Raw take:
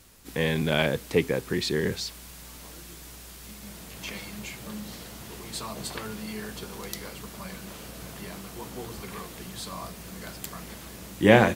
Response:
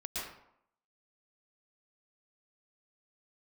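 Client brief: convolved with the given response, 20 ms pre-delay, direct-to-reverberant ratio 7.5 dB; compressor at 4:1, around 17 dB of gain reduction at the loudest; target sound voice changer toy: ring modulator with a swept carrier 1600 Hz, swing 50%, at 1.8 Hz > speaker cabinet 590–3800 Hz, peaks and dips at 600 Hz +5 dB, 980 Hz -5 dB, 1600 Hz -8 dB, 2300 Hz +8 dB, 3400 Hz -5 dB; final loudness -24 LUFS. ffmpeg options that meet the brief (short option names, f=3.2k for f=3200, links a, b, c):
-filter_complex "[0:a]acompressor=threshold=-32dB:ratio=4,asplit=2[a][b];[1:a]atrim=start_sample=2205,adelay=20[c];[b][c]afir=irnorm=-1:irlink=0,volume=-10dB[d];[a][d]amix=inputs=2:normalize=0,aeval=exprs='val(0)*sin(2*PI*1600*n/s+1600*0.5/1.8*sin(2*PI*1.8*n/s))':c=same,highpass=590,equalizer=f=600:t=q:w=4:g=5,equalizer=f=980:t=q:w=4:g=-5,equalizer=f=1.6k:t=q:w=4:g=-8,equalizer=f=2.3k:t=q:w=4:g=8,equalizer=f=3.4k:t=q:w=4:g=-5,lowpass=f=3.8k:w=0.5412,lowpass=f=3.8k:w=1.3066,volume=15.5dB"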